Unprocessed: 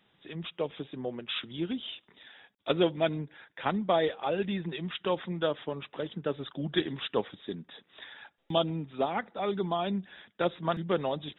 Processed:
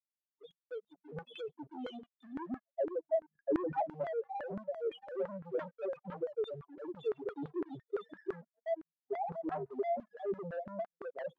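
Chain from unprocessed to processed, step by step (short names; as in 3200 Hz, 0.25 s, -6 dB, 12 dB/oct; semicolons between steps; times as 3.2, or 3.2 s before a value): loudest bins only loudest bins 1; compressor 4:1, threshold -40 dBFS, peak gain reduction 10 dB; three bands offset in time highs, mids, lows 0.12/0.8 s, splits 470/2000 Hz; reverb removal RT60 0.75 s; sample leveller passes 3; 2.84–3.72 tilt -3.5 dB/oct; expander -54 dBFS; LFO band-pass saw down 5.9 Hz 330–1500 Hz; gain +8 dB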